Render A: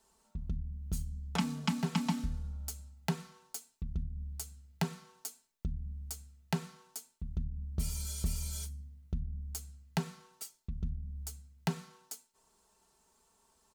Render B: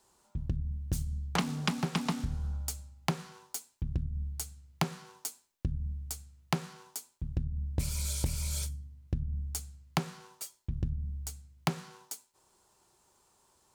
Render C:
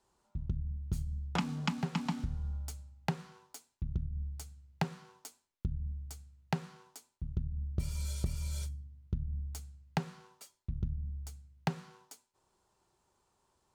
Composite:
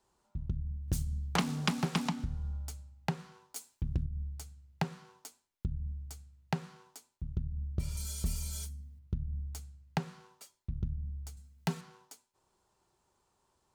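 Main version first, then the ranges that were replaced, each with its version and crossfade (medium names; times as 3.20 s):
C
0.88–2.09 s: from B
3.56–4.06 s: from B
7.97–8.99 s: from A
11.37–11.81 s: from A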